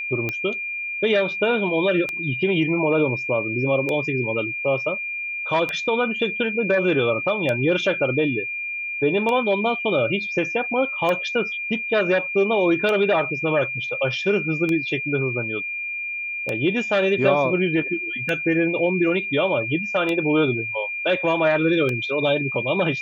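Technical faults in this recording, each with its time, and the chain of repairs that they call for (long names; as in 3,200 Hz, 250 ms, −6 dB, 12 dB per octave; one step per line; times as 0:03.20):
scratch tick 33 1/3 rpm −12 dBFS
whistle 2,400 Hz −26 dBFS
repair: click removal
notch filter 2,400 Hz, Q 30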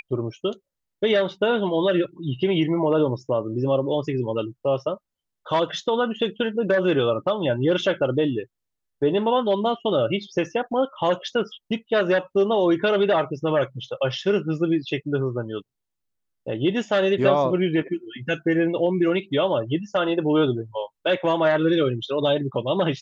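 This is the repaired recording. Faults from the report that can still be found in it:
none of them is left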